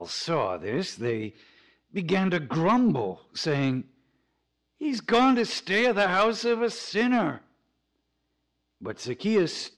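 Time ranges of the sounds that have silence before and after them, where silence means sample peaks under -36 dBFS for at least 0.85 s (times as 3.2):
4.81–7.36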